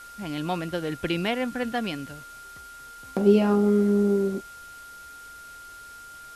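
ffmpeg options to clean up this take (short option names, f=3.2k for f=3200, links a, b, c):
-af "bandreject=f=1.4k:w=30,afwtdn=0.0032"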